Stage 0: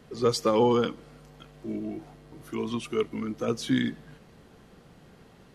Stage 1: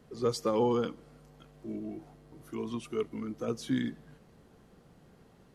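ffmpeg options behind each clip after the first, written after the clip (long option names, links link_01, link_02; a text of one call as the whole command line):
ffmpeg -i in.wav -af "equalizer=frequency=2800:width_type=o:width=2.1:gain=-4.5,volume=-5dB" out.wav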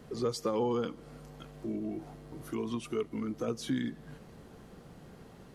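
ffmpeg -i in.wav -af "acompressor=threshold=-43dB:ratio=2,volume=7dB" out.wav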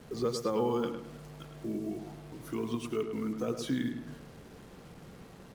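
ffmpeg -i in.wav -filter_complex "[0:a]acrusher=bits=8:mix=0:aa=0.5,asplit=2[link_01][link_02];[link_02]adelay=106,lowpass=frequency=2700:poles=1,volume=-7dB,asplit=2[link_03][link_04];[link_04]adelay=106,lowpass=frequency=2700:poles=1,volume=0.38,asplit=2[link_05][link_06];[link_06]adelay=106,lowpass=frequency=2700:poles=1,volume=0.38,asplit=2[link_07][link_08];[link_08]adelay=106,lowpass=frequency=2700:poles=1,volume=0.38[link_09];[link_01][link_03][link_05][link_07][link_09]amix=inputs=5:normalize=0" out.wav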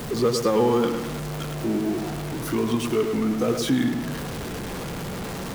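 ffmpeg -i in.wav -af "aeval=exprs='val(0)+0.5*0.015*sgn(val(0))':channel_layout=same,volume=8.5dB" out.wav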